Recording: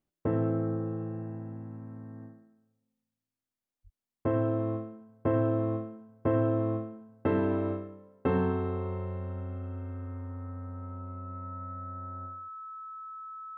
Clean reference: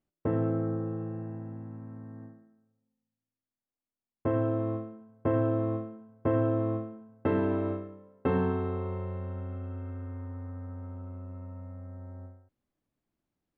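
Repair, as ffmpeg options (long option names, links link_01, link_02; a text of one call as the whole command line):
ffmpeg -i in.wav -filter_complex "[0:a]bandreject=frequency=1300:width=30,asplit=3[link_01][link_02][link_03];[link_01]afade=type=out:start_time=3.83:duration=0.02[link_04];[link_02]highpass=frequency=140:width=0.5412,highpass=frequency=140:width=1.3066,afade=type=in:start_time=3.83:duration=0.02,afade=type=out:start_time=3.95:duration=0.02[link_05];[link_03]afade=type=in:start_time=3.95:duration=0.02[link_06];[link_04][link_05][link_06]amix=inputs=3:normalize=0" out.wav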